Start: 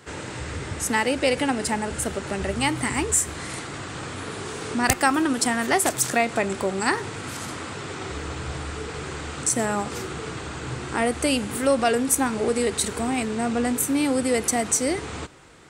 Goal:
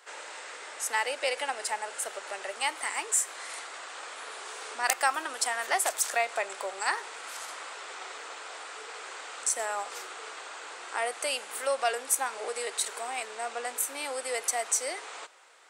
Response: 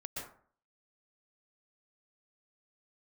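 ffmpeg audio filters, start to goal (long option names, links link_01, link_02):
-af "highpass=frequency=560:width=0.5412,highpass=frequency=560:width=1.3066,volume=-5dB"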